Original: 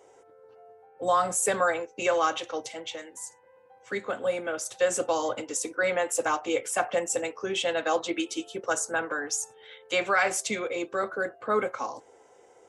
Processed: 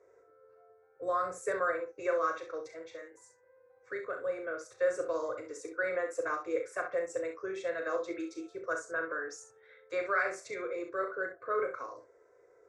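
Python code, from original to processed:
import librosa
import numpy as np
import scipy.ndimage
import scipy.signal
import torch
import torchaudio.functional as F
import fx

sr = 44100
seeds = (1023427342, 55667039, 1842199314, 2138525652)

p1 = scipy.signal.sosfilt(scipy.signal.butter(2, 3600.0, 'lowpass', fs=sr, output='sos'), x)
p2 = fx.fixed_phaser(p1, sr, hz=820.0, stages=6)
p3 = p2 + fx.room_early_taps(p2, sr, ms=(37, 65), db=(-7.5, -9.0), dry=0)
y = p3 * 10.0 ** (-5.5 / 20.0)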